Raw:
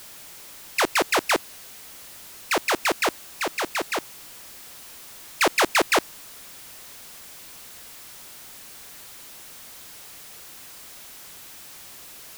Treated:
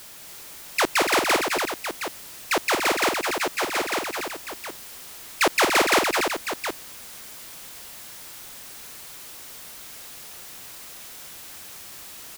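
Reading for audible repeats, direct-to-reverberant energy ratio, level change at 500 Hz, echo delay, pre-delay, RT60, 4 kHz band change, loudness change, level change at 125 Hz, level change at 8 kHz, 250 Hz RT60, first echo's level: 3, no reverb, +2.0 dB, 219 ms, no reverb, no reverb, +2.0 dB, +0.5 dB, +2.0 dB, +2.0 dB, no reverb, -6.0 dB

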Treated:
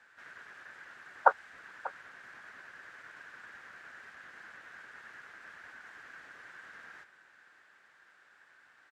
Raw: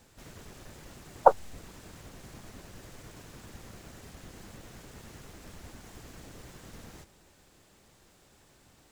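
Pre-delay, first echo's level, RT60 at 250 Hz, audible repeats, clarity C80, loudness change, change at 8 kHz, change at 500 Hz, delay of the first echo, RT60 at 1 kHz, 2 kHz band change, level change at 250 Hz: no reverb, -17.0 dB, no reverb, 1, no reverb, -14.5 dB, -14.5 dB, -9.5 dB, 590 ms, no reverb, +10.0 dB, -17.0 dB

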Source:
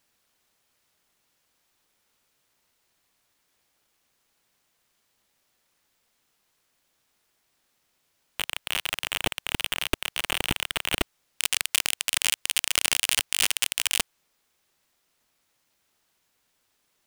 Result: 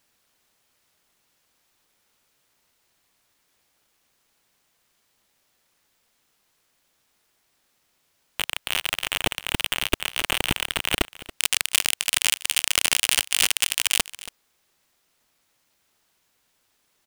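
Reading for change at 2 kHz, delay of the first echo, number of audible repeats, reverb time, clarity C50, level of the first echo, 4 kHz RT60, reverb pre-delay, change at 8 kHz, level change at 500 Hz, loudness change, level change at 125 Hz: +3.0 dB, 279 ms, 1, no reverb, no reverb, -17.5 dB, no reverb, no reverb, +3.0 dB, +3.0 dB, +3.0 dB, +3.0 dB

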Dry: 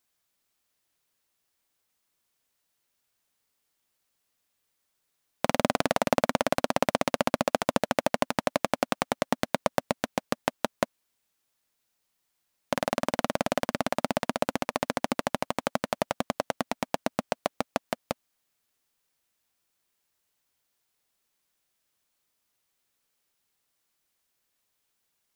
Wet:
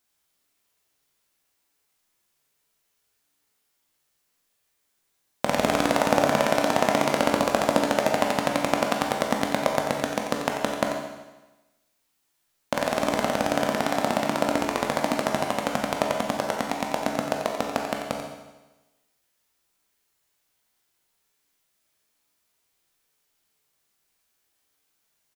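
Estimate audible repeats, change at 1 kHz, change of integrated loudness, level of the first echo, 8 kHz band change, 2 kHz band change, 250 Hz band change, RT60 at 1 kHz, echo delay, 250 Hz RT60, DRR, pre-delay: 1, +4.5 dB, +4.5 dB, -9.0 dB, +4.5 dB, +4.5 dB, +4.5 dB, 1.1 s, 90 ms, 1.1 s, 0.0 dB, 14 ms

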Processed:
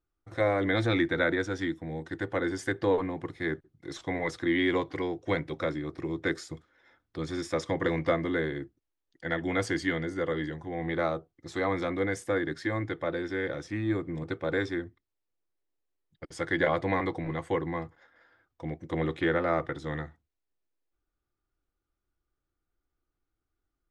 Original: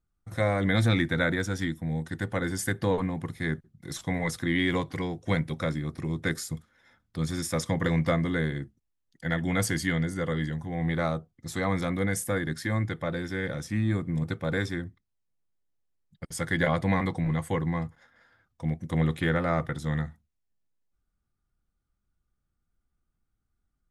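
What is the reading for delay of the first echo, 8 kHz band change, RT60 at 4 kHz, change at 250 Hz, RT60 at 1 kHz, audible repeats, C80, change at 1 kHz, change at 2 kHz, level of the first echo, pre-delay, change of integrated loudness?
no echo, -10.5 dB, no reverb, -2.0 dB, no reverb, no echo, no reverb, 0.0 dB, -1.0 dB, no echo, no reverb, -1.5 dB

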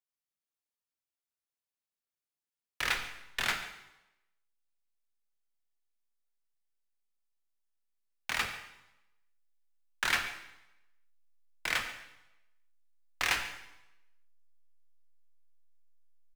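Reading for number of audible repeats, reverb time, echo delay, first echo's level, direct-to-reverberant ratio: 1, 0.90 s, 141 ms, -18.0 dB, 5.0 dB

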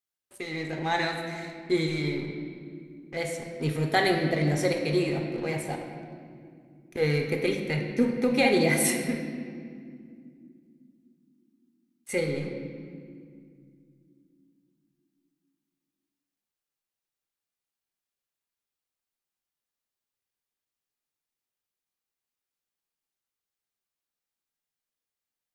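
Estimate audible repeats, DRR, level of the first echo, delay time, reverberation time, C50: no echo, 2.5 dB, no echo, no echo, 2.3 s, 4.5 dB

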